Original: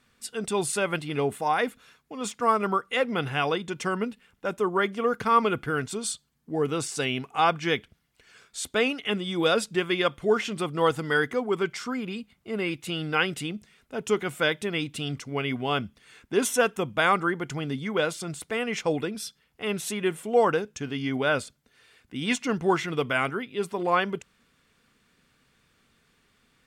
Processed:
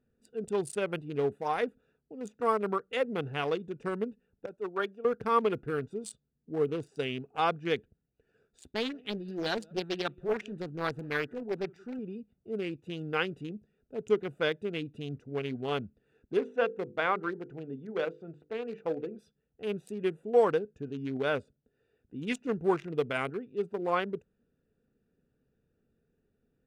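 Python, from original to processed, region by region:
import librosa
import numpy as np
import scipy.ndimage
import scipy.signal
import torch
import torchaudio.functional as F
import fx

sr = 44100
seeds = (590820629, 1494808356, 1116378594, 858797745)

y = fx.chain(x, sr, fx.low_shelf(hz=420.0, db=-10.0),
    fx.notch(hz=2000.0, q=9.7),
    fx.band_widen(depth_pct=100), at=(4.46, 5.05))
y = fx.chain(y, sr, fx.peak_eq(hz=490.0, db=-8.5, octaves=0.53),
    fx.echo_single(ms=180, db=-23.0),
    fx.doppler_dist(depth_ms=0.6), at=(8.58, 11.99))
y = fx.chain(y, sr, fx.lowpass(hz=2900.0, slope=12),
    fx.low_shelf(hz=150.0, db=-11.5),
    fx.hum_notches(base_hz=50, count=10), at=(16.37, 19.19))
y = fx.wiener(y, sr, points=41)
y = fx.peak_eq(y, sr, hz=440.0, db=6.0, octaves=0.52)
y = y * 10.0 ** (-6.0 / 20.0)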